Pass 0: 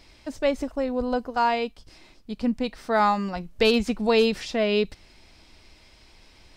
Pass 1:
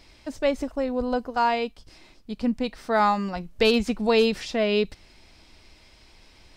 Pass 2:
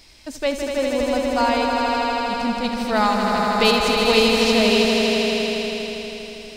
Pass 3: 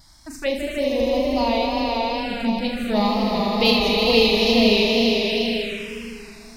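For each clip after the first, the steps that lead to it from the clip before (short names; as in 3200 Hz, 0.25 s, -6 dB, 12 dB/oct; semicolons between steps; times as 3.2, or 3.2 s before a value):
nothing audible
high shelf 3400 Hz +11 dB; on a send: swelling echo 80 ms, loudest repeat 5, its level -6 dB
wow and flutter 60 cents; flutter echo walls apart 6.6 m, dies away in 0.39 s; envelope phaser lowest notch 430 Hz, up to 1500 Hz, full sweep at -16 dBFS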